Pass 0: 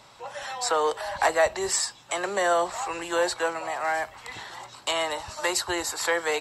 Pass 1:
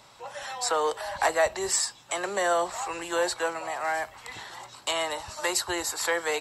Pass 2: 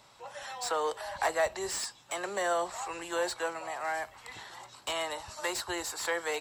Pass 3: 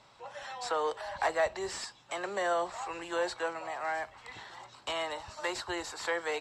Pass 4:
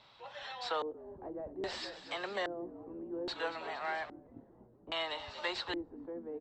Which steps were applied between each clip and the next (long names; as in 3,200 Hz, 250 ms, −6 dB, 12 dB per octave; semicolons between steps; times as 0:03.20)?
high-shelf EQ 8,700 Hz +5.5 dB; level −2 dB
slew-rate limiting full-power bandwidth 260 Hz; level −5 dB
high-frequency loss of the air 79 metres
echo with shifted repeats 233 ms, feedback 58%, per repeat −54 Hz, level −13 dB; auto-filter low-pass square 0.61 Hz 300–3,800 Hz; level −4 dB